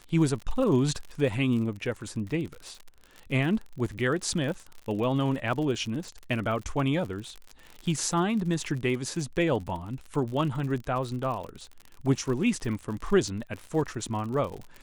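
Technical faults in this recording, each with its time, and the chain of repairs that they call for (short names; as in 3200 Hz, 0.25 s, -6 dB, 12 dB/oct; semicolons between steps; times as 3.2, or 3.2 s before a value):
crackle 57/s -34 dBFS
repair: de-click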